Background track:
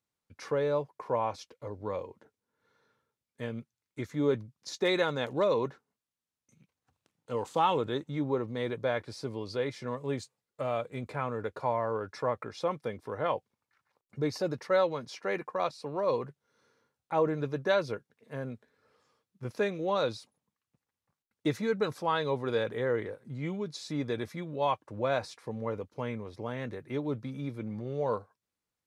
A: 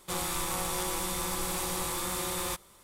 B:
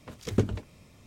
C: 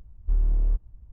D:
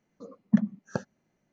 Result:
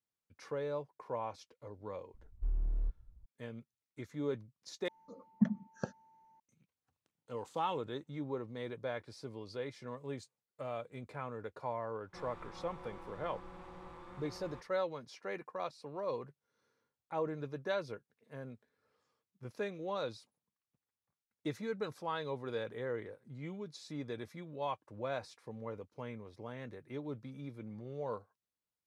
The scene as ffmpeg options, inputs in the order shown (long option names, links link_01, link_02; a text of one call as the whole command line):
ffmpeg -i bed.wav -i cue0.wav -i cue1.wav -i cue2.wav -i cue3.wav -filter_complex "[0:a]volume=-9dB[link_01];[4:a]aeval=exprs='val(0)+0.00178*sin(2*PI*890*n/s)':channel_layout=same[link_02];[1:a]lowpass=1600[link_03];[link_01]asplit=2[link_04][link_05];[link_04]atrim=end=4.884[link_06];[link_02]atrim=end=1.52,asetpts=PTS-STARTPTS,volume=-7.5dB[link_07];[link_05]atrim=start=6.396[link_08];[3:a]atrim=end=1.12,asetpts=PTS-STARTPTS,volume=-11.5dB,afade=type=in:duration=0.004:curve=hsin,afade=type=out:start_time=1.116:duration=0.004:curve=hsin,adelay=2140[link_09];[link_03]atrim=end=2.83,asetpts=PTS-STARTPTS,volume=-15dB,afade=type=in:duration=0.004:curve=hsin,afade=type=out:start_time=2.826:duration=0.004:curve=hsin,adelay=12050[link_10];[link_06][link_07]acrossfade=duration=0.004:curve1=hsin:curve2=hsin[link_11];[link_11][link_08]acrossfade=duration=0.004:curve1=hsin:curve2=hsin[link_12];[link_12][link_09][link_10]amix=inputs=3:normalize=0" out.wav